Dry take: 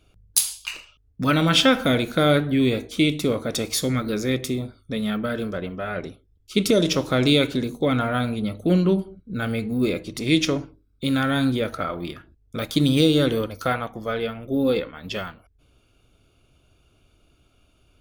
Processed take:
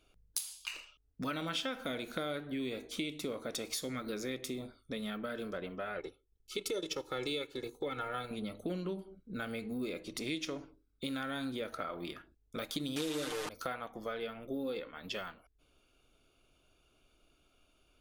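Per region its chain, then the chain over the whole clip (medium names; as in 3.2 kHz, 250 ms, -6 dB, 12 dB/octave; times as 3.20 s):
5.97–8.31 s: comb 2.3 ms, depth 79% + transient shaper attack -4 dB, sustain -9 dB
12.96–13.49 s: one-bit delta coder 64 kbps, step -16.5 dBFS + bass shelf 140 Hz -8.5 dB + comb 6.6 ms, depth 84%
whole clip: peaking EQ 95 Hz -12 dB 2 oct; compression 4:1, threshold -30 dBFS; trim -6 dB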